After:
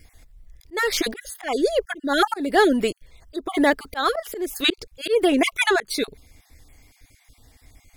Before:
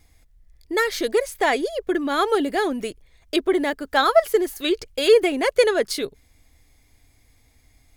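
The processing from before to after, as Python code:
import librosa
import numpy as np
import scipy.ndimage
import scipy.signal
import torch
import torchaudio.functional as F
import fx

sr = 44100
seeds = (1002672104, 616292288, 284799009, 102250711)

y = fx.spec_dropout(x, sr, seeds[0], share_pct=25)
y = fx.auto_swell(y, sr, attack_ms=264.0)
y = y * librosa.db_to_amplitude(6.5)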